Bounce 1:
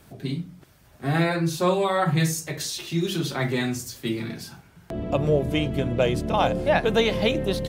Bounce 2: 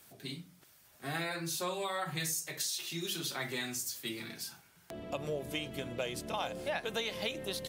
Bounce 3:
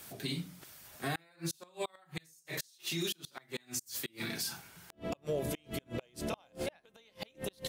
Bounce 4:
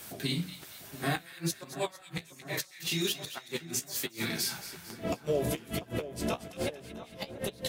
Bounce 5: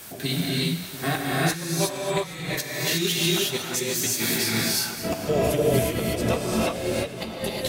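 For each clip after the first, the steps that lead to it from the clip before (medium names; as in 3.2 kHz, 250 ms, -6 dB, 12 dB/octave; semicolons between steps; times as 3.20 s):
tilt EQ +3 dB/octave; compression 3:1, threshold -24 dBFS, peak gain reduction 6.5 dB; trim -9 dB
inverted gate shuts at -26 dBFS, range -35 dB; peak limiter -34.5 dBFS, peak gain reduction 11 dB; trim +8.5 dB
flange 1.2 Hz, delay 7.9 ms, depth 10 ms, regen -35%; two-band feedback delay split 1.6 kHz, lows 692 ms, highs 228 ms, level -12.5 dB; trim +8.5 dB
gated-style reverb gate 390 ms rising, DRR -4.5 dB; trim +4.5 dB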